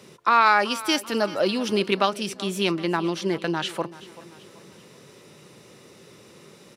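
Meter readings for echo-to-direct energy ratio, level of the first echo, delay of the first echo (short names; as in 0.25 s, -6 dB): -17.0 dB, -18.0 dB, 0.384 s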